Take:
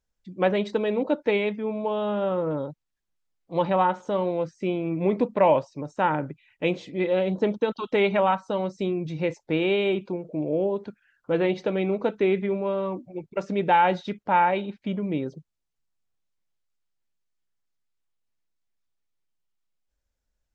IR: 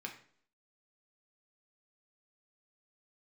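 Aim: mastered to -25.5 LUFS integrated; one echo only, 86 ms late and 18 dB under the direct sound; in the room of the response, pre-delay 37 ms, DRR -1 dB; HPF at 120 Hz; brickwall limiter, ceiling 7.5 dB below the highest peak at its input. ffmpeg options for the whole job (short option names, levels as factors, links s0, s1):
-filter_complex "[0:a]highpass=120,alimiter=limit=0.168:level=0:latency=1,aecho=1:1:86:0.126,asplit=2[s0][s1];[1:a]atrim=start_sample=2205,adelay=37[s2];[s1][s2]afir=irnorm=-1:irlink=0,volume=1.19[s3];[s0][s3]amix=inputs=2:normalize=0,volume=0.891"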